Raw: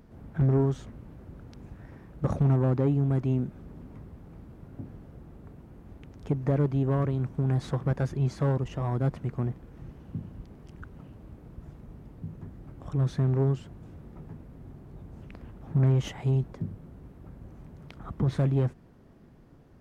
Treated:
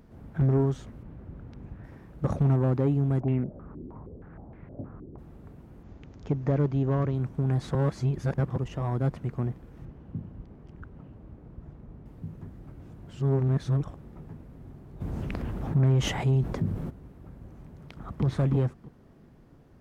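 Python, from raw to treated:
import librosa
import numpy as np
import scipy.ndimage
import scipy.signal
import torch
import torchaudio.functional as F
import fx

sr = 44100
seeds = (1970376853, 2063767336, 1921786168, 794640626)

y = fx.bass_treble(x, sr, bass_db=3, treble_db=-12, at=(1.03, 1.84))
y = fx.filter_held_lowpass(y, sr, hz=6.4, low_hz=360.0, high_hz=2100.0, at=(3.19, 5.17), fade=0.02)
y = fx.resample_bad(y, sr, factor=3, down='none', up='filtered', at=(5.83, 7.15))
y = fx.lowpass(y, sr, hz=1700.0, slope=6, at=(9.85, 12.06))
y = fx.env_flatten(y, sr, amount_pct=50, at=(15.0, 16.89), fade=0.02)
y = fx.echo_throw(y, sr, start_s=17.64, length_s=0.6, ms=320, feedback_pct=15, wet_db=-2.5)
y = fx.edit(y, sr, fx.reverse_span(start_s=7.75, length_s=0.81),
    fx.reverse_span(start_s=12.79, length_s=1.18), tone=tone)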